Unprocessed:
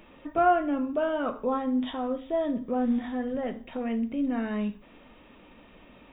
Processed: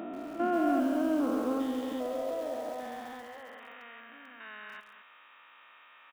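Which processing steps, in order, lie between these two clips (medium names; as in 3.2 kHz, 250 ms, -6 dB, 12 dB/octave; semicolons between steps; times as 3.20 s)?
spectrogram pixelated in time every 400 ms; dynamic bell 780 Hz, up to -5 dB, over -42 dBFS, Q 0.78; high-pass sweep 220 Hz -> 1.3 kHz, 0.81–3.84 s; delay 215 ms -11.5 dB; bit-crushed delay 136 ms, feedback 80%, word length 7-bit, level -12 dB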